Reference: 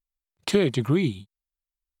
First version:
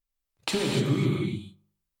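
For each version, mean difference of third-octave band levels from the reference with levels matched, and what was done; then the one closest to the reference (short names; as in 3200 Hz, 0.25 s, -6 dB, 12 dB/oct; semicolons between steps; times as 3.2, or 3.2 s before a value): 9.0 dB: de-hum 50.5 Hz, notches 4; compressor, threshold -28 dBFS, peak gain reduction 11.5 dB; on a send: narrowing echo 89 ms, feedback 49%, band-pass 760 Hz, level -19 dB; on the sum: non-linear reverb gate 0.32 s flat, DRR -2.5 dB; gain +1.5 dB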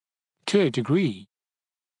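2.0 dB: high shelf 5100 Hz -5 dB; in parallel at -9 dB: overloaded stage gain 28 dB; on the sum: HPF 140 Hz 24 dB/oct; Vorbis 48 kbps 22050 Hz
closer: second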